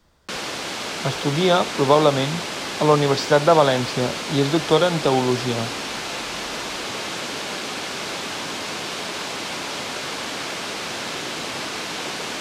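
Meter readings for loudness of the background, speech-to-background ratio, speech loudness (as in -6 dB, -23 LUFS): -27.5 LUFS, 7.5 dB, -20.0 LUFS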